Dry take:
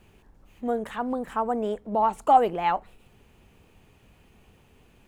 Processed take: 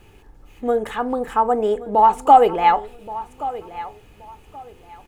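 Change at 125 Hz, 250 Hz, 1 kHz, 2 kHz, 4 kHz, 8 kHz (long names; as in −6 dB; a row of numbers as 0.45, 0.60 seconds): +3.5 dB, +4.0 dB, +8.5 dB, +7.5 dB, +8.0 dB, can't be measured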